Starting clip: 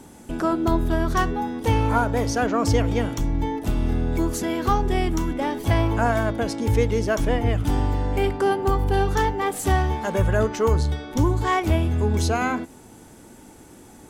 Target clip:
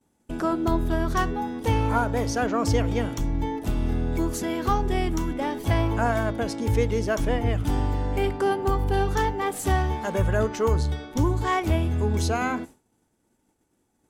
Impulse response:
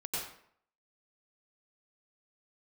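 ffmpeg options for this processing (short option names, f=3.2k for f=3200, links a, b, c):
-af "agate=range=-33dB:threshold=-32dB:ratio=3:detection=peak,volume=-2.5dB"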